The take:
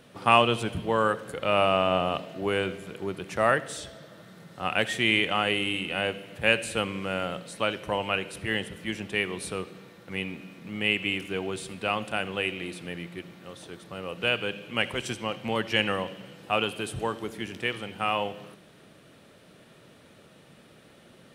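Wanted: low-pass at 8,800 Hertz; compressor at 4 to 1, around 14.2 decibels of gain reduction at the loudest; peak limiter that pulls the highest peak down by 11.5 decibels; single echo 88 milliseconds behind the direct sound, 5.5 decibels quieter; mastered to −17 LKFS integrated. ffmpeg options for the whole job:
ffmpeg -i in.wav -af "lowpass=8800,acompressor=threshold=-31dB:ratio=4,alimiter=level_in=2dB:limit=-24dB:level=0:latency=1,volume=-2dB,aecho=1:1:88:0.531,volume=21dB" out.wav

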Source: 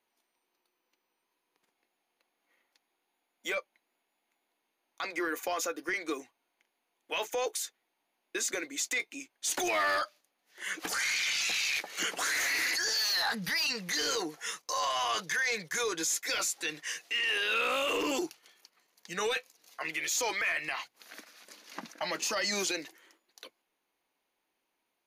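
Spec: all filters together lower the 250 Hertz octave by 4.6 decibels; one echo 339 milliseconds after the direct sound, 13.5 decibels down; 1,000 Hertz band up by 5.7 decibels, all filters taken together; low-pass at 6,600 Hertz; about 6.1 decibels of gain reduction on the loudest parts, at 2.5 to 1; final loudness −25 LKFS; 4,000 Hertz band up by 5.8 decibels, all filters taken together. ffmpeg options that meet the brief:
ffmpeg -i in.wav -af "lowpass=6600,equalizer=frequency=250:width_type=o:gain=-8,equalizer=frequency=1000:width_type=o:gain=7,equalizer=frequency=4000:width_type=o:gain=7.5,acompressor=threshold=-31dB:ratio=2.5,aecho=1:1:339:0.211,volume=7dB" out.wav

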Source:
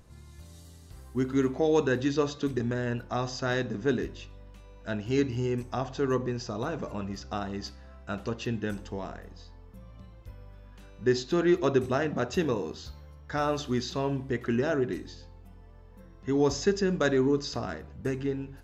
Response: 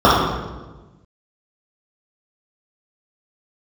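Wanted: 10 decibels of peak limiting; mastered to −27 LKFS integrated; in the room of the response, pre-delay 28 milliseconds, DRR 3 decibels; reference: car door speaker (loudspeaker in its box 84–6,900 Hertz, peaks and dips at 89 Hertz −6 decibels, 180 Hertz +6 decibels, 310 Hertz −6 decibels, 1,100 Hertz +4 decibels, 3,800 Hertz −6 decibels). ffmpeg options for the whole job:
-filter_complex "[0:a]alimiter=limit=-22.5dB:level=0:latency=1,asplit=2[link_01][link_02];[1:a]atrim=start_sample=2205,adelay=28[link_03];[link_02][link_03]afir=irnorm=-1:irlink=0,volume=-34dB[link_04];[link_01][link_04]amix=inputs=2:normalize=0,highpass=84,equalizer=frequency=89:width_type=q:width=4:gain=-6,equalizer=frequency=180:width_type=q:width=4:gain=6,equalizer=frequency=310:width_type=q:width=4:gain=-6,equalizer=frequency=1100:width_type=q:width=4:gain=4,equalizer=frequency=3800:width_type=q:width=4:gain=-6,lowpass=frequency=6900:width=0.5412,lowpass=frequency=6900:width=1.3066,volume=4dB"

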